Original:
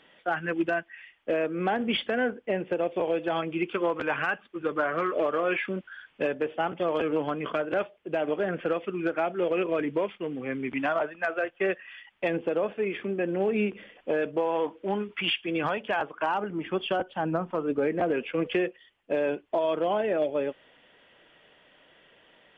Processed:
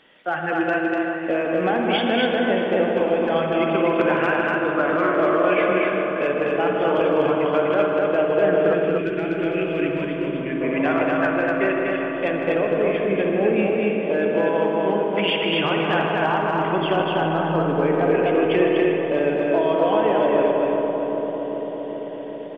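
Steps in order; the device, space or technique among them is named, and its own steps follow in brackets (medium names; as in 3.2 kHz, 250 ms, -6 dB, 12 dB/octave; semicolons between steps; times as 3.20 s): dub delay into a spring reverb (filtered feedback delay 392 ms, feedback 78%, low-pass 1.5 kHz, level -6.5 dB; spring tank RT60 2.4 s, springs 55 ms, chirp 65 ms, DRR 3 dB); 8.74–10.61 s: high-order bell 780 Hz -11.5 dB; loudspeakers at several distances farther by 54 m -10 dB, 84 m -2 dB; trim +3 dB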